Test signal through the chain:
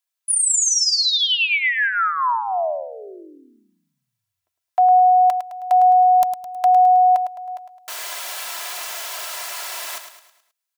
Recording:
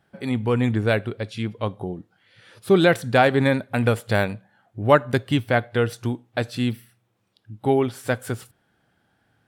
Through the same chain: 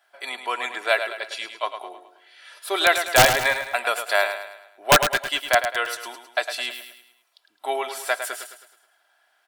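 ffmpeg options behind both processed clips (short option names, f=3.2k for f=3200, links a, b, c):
-filter_complex "[0:a]highpass=f=650:w=0.5412,highpass=f=650:w=1.3066,highshelf=f=3.2k:g=3,aecho=1:1:3:0.54,aeval=exprs='(mod(2.66*val(0)+1,2)-1)/2.66':c=same,asplit=2[a][b];[b]aecho=0:1:106|212|318|424|530:0.355|0.16|0.0718|0.0323|0.0145[c];[a][c]amix=inputs=2:normalize=0,volume=3dB"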